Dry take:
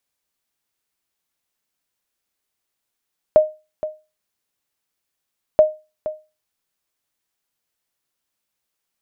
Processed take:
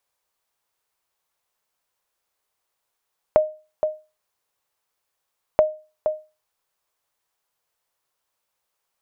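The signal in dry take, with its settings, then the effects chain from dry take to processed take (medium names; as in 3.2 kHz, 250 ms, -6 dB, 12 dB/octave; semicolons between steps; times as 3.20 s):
sonar ping 618 Hz, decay 0.28 s, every 2.23 s, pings 2, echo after 0.47 s, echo -14 dB -3.5 dBFS
graphic EQ 250/500/1000 Hz -7/+5/+7 dB; compression 2.5:1, threshold -19 dBFS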